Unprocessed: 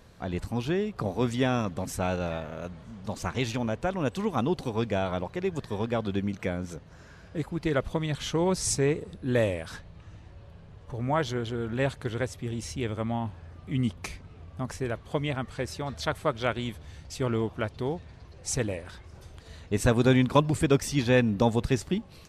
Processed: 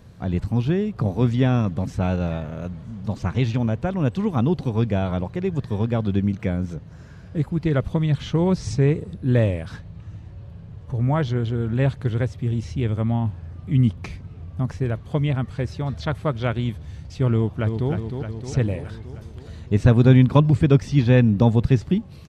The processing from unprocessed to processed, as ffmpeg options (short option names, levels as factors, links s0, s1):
-filter_complex "[0:a]asplit=2[s0][s1];[s1]afade=t=in:st=17.35:d=0.01,afade=t=out:st=17.91:d=0.01,aecho=0:1:310|620|930|1240|1550|1860|2170|2480|2790|3100:0.501187|0.325772|0.211752|0.137639|0.0894651|0.0581523|0.037799|0.0245693|0.0159701|0.0103805[s2];[s0][s2]amix=inputs=2:normalize=0,acrossover=split=5300[s3][s4];[s4]acompressor=threshold=0.00112:ratio=4:attack=1:release=60[s5];[s3][s5]amix=inputs=2:normalize=0,equalizer=f=120:w=0.57:g=12"